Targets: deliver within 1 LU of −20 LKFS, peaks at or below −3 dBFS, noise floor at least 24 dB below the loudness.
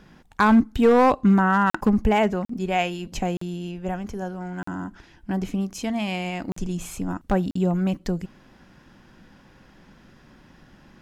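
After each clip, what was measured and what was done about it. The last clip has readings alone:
share of clipped samples 0.4%; peaks flattened at −10.5 dBFS; number of dropouts 6; longest dropout 44 ms; integrated loudness −23.5 LKFS; sample peak −10.5 dBFS; target loudness −20.0 LKFS
→ clipped peaks rebuilt −10.5 dBFS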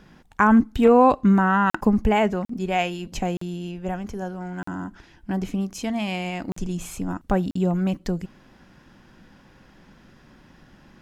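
share of clipped samples 0.0%; number of dropouts 6; longest dropout 44 ms
→ repair the gap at 0:01.70/0:02.45/0:03.37/0:04.63/0:06.52/0:07.51, 44 ms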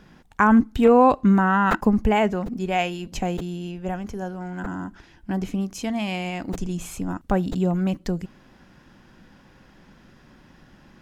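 number of dropouts 0; integrated loudness −22.5 LKFS; sample peak −4.5 dBFS; target loudness −20.0 LKFS
→ level +2.5 dB
brickwall limiter −3 dBFS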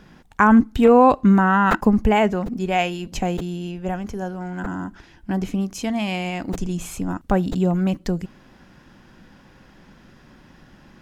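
integrated loudness −20.5 LKFS; sample peak −3.0 dBFS; background noise floor −51 dBFS

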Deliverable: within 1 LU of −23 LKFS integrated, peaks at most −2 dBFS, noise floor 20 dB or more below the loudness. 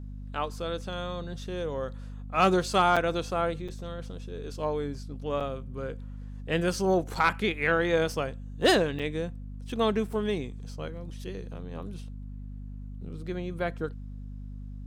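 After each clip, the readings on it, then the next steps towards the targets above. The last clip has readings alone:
number of dropouts 5; longest dropout 6.0 ms; mains hum 50 Hz; hum harmonics up to 250 Hz; level of the hum −37 dBFS; integrated loudness −29.5 LKFS; sample peak −12.0 dBFS; target loudness −23.0 LKFS
→ repair the gap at 0:02.96/0:03.68/0:05.40/0:07.15/0:08.99, 6 ms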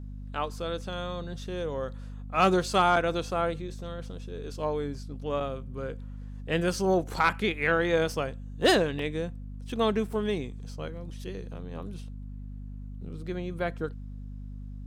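number of dropouts 0; mains hum 50 Hz; hum harmonics up to 250 Hz; level of the hum −37 dBFS
→ hum removal 50 Hz, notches 5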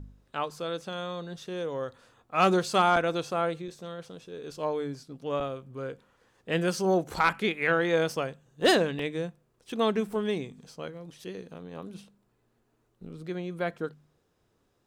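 mains hum none found; integrated loudness −29.0 LKFS; sample peak −12.5 dBFS; target loudness −23.0 LKFS
→ level +6 dB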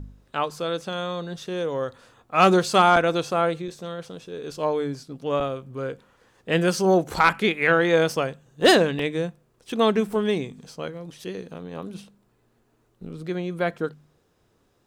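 integrated loudness −23.0 LKFS; sample peak −6.5 dBFS; background noise floor −66 dBFS

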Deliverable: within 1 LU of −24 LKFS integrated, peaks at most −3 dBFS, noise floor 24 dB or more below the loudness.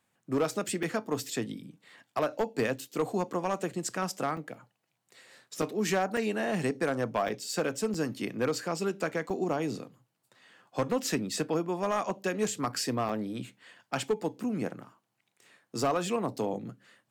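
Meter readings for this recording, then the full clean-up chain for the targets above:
share of clipped samples 0.6%; peaks flattened at −21.0 dBFS; number of dropouts 8; longest dropout 3.3 ms; integrated loudness −32.0 LKFS; sample peak −21.0 dBFS; target loudness −24.0 LKFS
→ clipped peaks rebuilt −21 dBFS
repair the gap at 0:00.83/0:04.37/0:05.62/0:06.17/0:07.28/0:07.94/0:09.30/0:13.09, 3.3 ms
level +8 dB

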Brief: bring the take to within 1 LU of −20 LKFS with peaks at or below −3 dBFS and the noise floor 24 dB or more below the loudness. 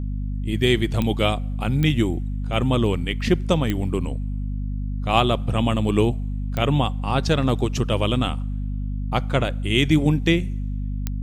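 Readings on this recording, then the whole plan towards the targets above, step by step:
number of clicks 5; mains hum 50 Hz; hum harmonics up to 250 Hz; level of the hum −24 dBFS; integrated loudness −22.5 LKFS; sample peak −2.0 dBFS; target loudness −20.0 LKFS
→ click removal
hum removal 50 Hz, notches 5
level +2.5 dB
brickwall limiter −3 dBFS

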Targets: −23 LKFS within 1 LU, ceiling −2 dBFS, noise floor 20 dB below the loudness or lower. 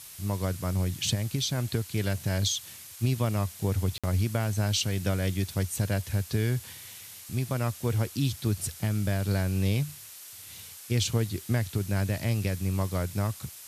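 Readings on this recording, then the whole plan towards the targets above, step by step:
number of dropouts 1; longest dropout 56 ms; background noise floor −46 dBFS; target noise floor −49 dBFS; integrated loudness −29.0 LKFS; sample peak −14.5 dBFS; target loudness −23.0 LKFS
→ repair the gap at 0:03.98, 56 ms
broadband denoise 6 dB, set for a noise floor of −46 dBFS
level +6 dB

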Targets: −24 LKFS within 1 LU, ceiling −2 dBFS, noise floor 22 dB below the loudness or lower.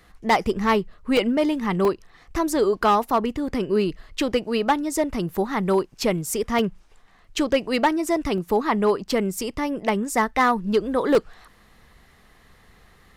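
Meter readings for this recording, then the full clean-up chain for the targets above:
share of clipped samples 0.6%; peaks flattened at −12.0 dBFS; number of dropouts 7; longest dropout 1.2 ms; integrated loudness −23.0 LKFS; sample peak −12.0 dBFS; target loudness −24.0 LKFS
→ clipped peaks rebuilt −12 dBFS
repair the gap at 0:00.46/0:01.17/0:01.85/0:05.29/0:06.59/0:08.38/0:11.15, 1.2 ms
level −1 dB

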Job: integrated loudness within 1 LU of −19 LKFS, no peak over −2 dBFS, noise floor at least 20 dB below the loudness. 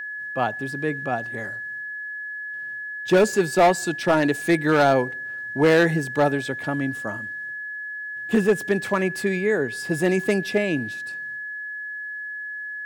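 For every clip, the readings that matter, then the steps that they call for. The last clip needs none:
share of clipped samples 0.7%; peaks flattened at −11.0 dBFS; interfering tone 1,700 Hz; level of the tone −30 dBFS; integrated loudness −23.5 LKFS; sample peak −11.0 dBFS; target loudness −19.0 LKFS
→ clipped peaks rebuilt −11 dBFS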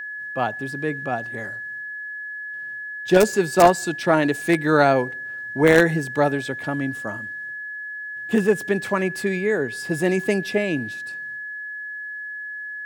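share of clipped samples 0.0%; interfering tone 1,700 Hz; level of the tone −30 dBFS
→ notch filter 1,700 Hz, Q 30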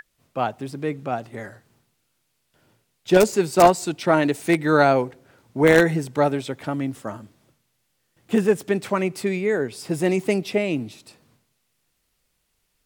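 interfering tone none found; integrated loudness −21.5 LKFS; sample peak −1.5 dBFS; target loudness −19.0 LKFS
→ level +2.5 dB
brickwall limiter −2 dBFS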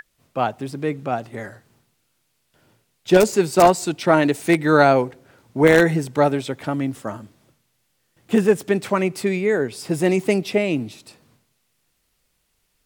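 integrated loudness −19.5 LKFS; sample peak −2.0 dBFS; background noise floor −70 dBFS

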